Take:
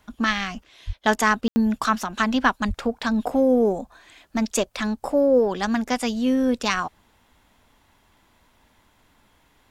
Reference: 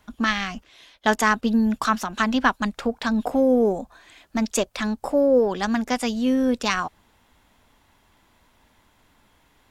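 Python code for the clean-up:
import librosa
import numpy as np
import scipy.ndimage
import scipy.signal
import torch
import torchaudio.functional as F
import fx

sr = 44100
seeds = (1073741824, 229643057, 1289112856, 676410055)

y = fx.highpass(x, sr, hz=140.0, slope=24, at=(0.86, 0.98), fade=0.02)
y = fx.highpass(y, sr, hz=140.0, slope=24, at=(2.67, 2.79), fade=0.02)
y = fx.fix_ambience(y, sr, seeds[0], print_start_s=8.67, print_end_s=9.17, start_s=1.48, end_s=1.56)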